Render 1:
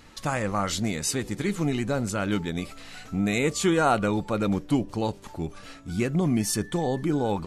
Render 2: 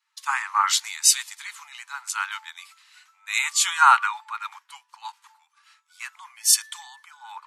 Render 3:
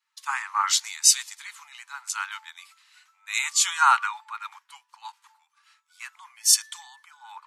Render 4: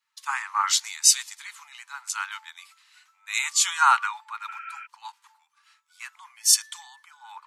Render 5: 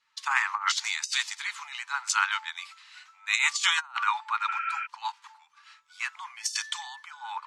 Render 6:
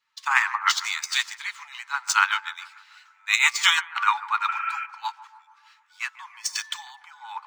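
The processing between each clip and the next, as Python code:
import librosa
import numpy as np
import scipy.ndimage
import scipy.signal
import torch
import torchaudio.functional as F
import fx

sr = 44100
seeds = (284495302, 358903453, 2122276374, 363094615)

y1 = scipy.signal.sosfilt(scipy.signal.butter(16, 880.0, 'highpass', fs=sr, output='sos'), x)
y1 = fx.band_widen(y1, sr, depth_pct=100)
y1 = F.gain(torch.from_numpy(y1), 3.5).numpy()
y2 = fx.dynamic_eq(y1, sr, hz=5900.0, q=1.3, threshold_db=-36.0, ratio=4.0, max_db=5)
y2 = F.gain(torch.from_numpy(y2), -3.5).numpy()
y3 = fx.spec_repair(y2, sr, seeds[0], start_s=4.51, length_s=0.32, low_hz=1300.0, high_hz=3200.0, source='before')
y4 = scipy.signal.sosfilt(scipy.signal.butter(2, 5800.0, 'lowpass', fs=sr, output='sos'), y3)
y4 = fx.over_compress(y4, sr, threshold_db=-29.0, ratio=-0.5)
y4 = F.gain(torch.from_numpy(y4), 3.0).numpy()
y5 = scipy.ndimage.median_filter(y4, 3, mode='constant')
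y5 = fx.echo_bbd(y5, sr, ms=146, stages=2048, feedback_pct=57, wet_db=-11.5)
y5 = fx.upward_expand(y5, sr, threshold_db=-40.0, expansion=1.5)
y5 = F.gain(torch.from_numpy(y5), 6.5).numpy()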